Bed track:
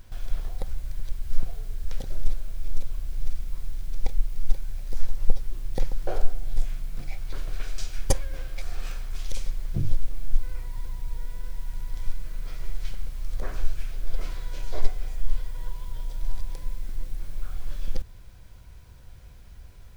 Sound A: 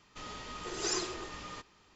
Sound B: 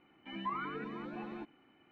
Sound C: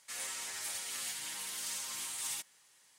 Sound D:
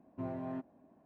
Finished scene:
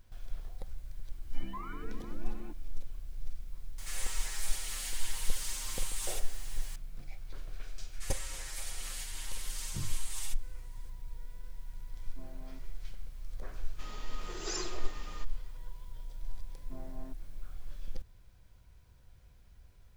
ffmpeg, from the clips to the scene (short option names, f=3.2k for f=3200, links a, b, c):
-filter_complex "[3:a]asplit=2[a][b];[4:a]asplit=2[c][d];[0:a]volume=-11.5dB[e];[2:a]equalizer=f=250:t=o:w=2.1:g=4.5[f];[a]aeval=exprs='val(0)+0.5*0.00794*sgn(val(0))':c=same[g];[f]atrim=end=1.91,asetpts=PTS-STARTPTS,volume=-7.5dB,afade=t=in:d=0.004:c=hsin,afade=t=out:st=1.906:d=0.004:c=hsin,adelay=1080[h];[g]atrim=end=2.98,asetpts=PTS-STARTPTS,volume=-3dB,afade=t=in:d=0.004:c=hsin,afade=t=out:st=2.976:d=0.004:c=hsin,adelay=3780[i];[b]atrim=end=2.98,asetpts=PTS-STARTPTS,volume=-3.5dB,afade=t=in:d=0.004:c=hsin,afade=t=out:st=2.976:d=0.004:c=hsin,adelay=7920[j];[c]atrim=end=1.05,asetpts=PTS-STARTPTS,volume=-14dB,afade=t=in:d=0.004:c=hsin,afade=t=out:st=1.046:d=0.004:c=hsin,adelay=11980[k];[1:a]atrim=end=1.95,asetpts=PTS-STARTPTS,volume=-4.5dB,afade=t=in:d=0.004:c=hsin,afade=t=out:st=1.946:d=0.004:c=hsin,adelay=13630[l];[d]atrim=end=1.05,asetpts=PTS-STARTPTS,volume=-10dB,afade=t=in:d=0.004:c=hsin,afade=t=out:st=1.046:d=0.004:c=hsin,adelay=728532S[m];[e][h][i][j][k][l][m]amix=inputs=7:normalize=0"